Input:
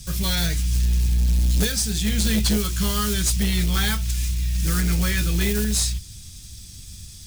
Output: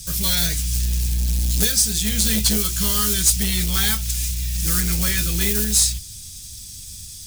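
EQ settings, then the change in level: high shelf 4000 Hz +11.5 dB; -2.0 dB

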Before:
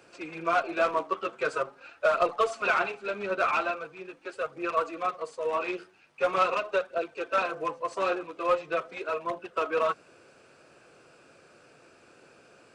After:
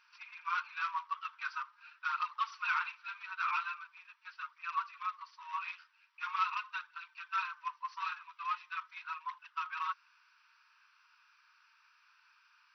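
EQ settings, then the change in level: brick-wall FIR band-pass 880–6000 Hz; -6.5 dB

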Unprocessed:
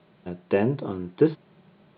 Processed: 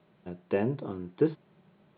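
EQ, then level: air absorption 99 m; -5.5 dB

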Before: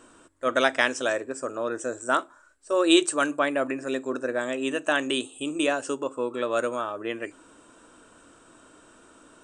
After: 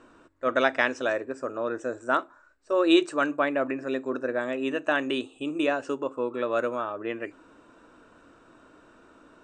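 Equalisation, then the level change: air absorption 160 m; notch 3200 Hz, Q 10; 0.0 dB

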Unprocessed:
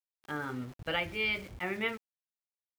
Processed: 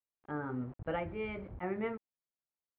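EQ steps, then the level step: LPF 1100 Hz 12 dB/oct; air absorption 160 m; +1.0 dB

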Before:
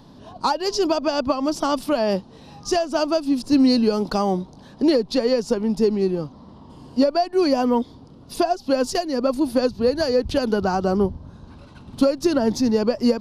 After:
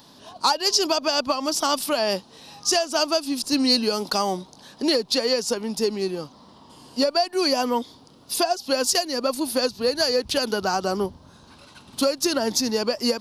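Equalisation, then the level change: tilt +3.5 dB/oct; 0.0 dB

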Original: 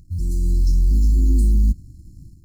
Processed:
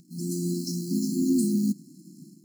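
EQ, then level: brick-wall FIR high-pass 160 Hz; +6.0 dB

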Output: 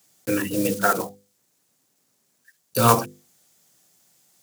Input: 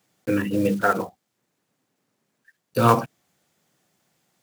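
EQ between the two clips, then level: tone controls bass -4 dB, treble +13 dB; low shelf 140 Hz +6.5 dB; notches 50/100/150/200/250/300/350/400/450/500 Hz; 0.0 dB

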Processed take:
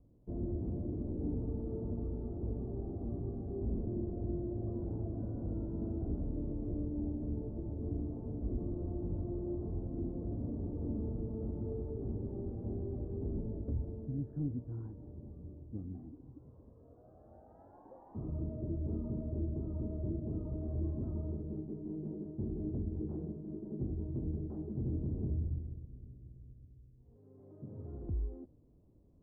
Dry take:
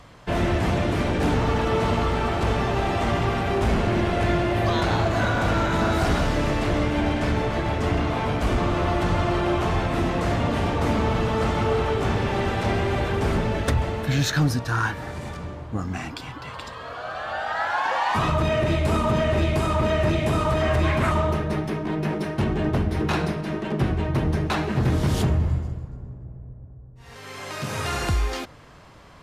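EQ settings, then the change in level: ladder low-pass 400 Hz, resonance 25%; bell 160 Hz -6 dB 1.1 oct; -6.0 dB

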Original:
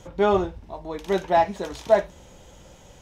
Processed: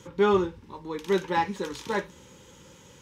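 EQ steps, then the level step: HPF 110 Hz 12 dB/oct; Butterworth band-stop 680 Hz, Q 2; 0.0 dB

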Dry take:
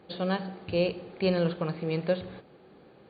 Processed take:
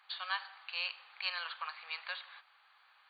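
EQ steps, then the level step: steep high-pass 1000 Hz 36 dB/oct; +1.0 dB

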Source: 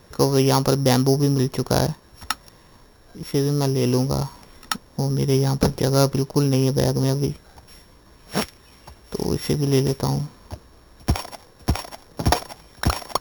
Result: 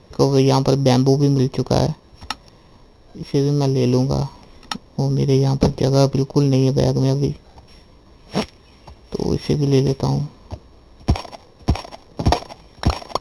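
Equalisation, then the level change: air absorption 86 m; bell 1500 Hz -10 dB 0.58 oct; notch 7400 Hz, Q 9.4; +3.5 dB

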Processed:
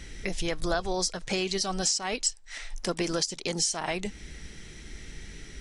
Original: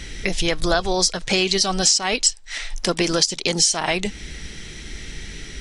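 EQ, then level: bell 3500 Hz -4.5 dB 1.4 oct; -8.0 dB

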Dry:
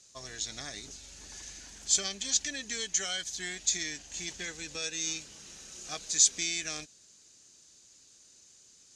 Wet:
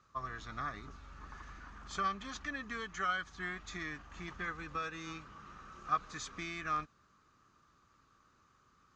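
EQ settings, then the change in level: synth low-pass 1200 Hz, resonance Q 11; bell 580 Hz -10.5 dB 2.4 oct; +5.0 dB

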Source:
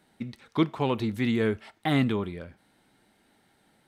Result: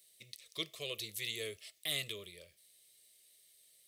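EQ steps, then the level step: Butterworth band-stop 870 Hz, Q 1.4; pre-emphasis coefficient 0.97; fixed phaser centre 610 Hz, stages 4; +9.5 dB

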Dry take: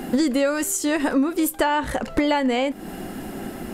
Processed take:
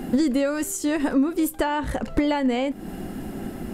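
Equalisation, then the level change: low shelf 300 Hz +9 dB; -5.0 dB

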